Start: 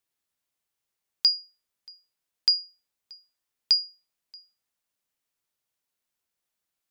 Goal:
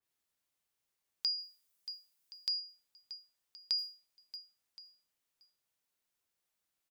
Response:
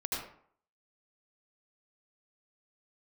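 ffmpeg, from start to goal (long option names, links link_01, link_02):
-filter_complex "[0:a]asettb=1/sr,asplit=3[link_01][link_02][link_03];[link_01]atrim=end=1.384[link_04];[link_02]atrim=start=1.38:end=2.6,asetpts=PTS-STARTPTS,afade=type=in:duration=0.004:curve=qsin,afade=type=out:start_time=1.216:duration=0.004:curve=qsin,highshelf=frequency=6800:gain=8.5[link_05];[link_03]atrim=start=2.596[link_06];[link_04][link_05]acrossfade=duration=0.004:curve1=hsin:curve2=qsin[link_07];[link_07][link_06]acrossfade=duration=0.004:curve1=qsin:curve2=hsin,acompressor=threshold=-22dB:ratio=6,alimiter=limit=-20dB:level=0:latency=1:release=256,asettb=1/sr,asplit=3[link_08][link_09][link_10];[link_08]atrim=end=3.784[link_11];[link_09]atrim=start=3.78:end=4.36,asetpts=PTS-STARTPTS,afade=type=in:duration=0.004:curve=qsin,afade=type=out:start_time=0.576:duration=0.004:curve=qsin,acrusher=bits=6:mode=log:mix=0:aa=0.000001[link_12];[link_10]atrim=start=4.356[link_13];[link_11][link_12]acrossfade=duration=0.004:curve1=hsin:curve2=qsin[link_14];[link_14][link_13]acrossfade=duration=0.004:curve1=qsin:curve2=hsin,aecho=1:1:1072:0.106,adynamicequalizer=threshold=0.00398:dfrequency=2800:dqfactor=0.7:tfrequency=2800:tqfactor=0.7:attack=5:release=100:ratio=0.375:range=2:mode=boostabove:tftype=highshelf,volume=-1.5dB"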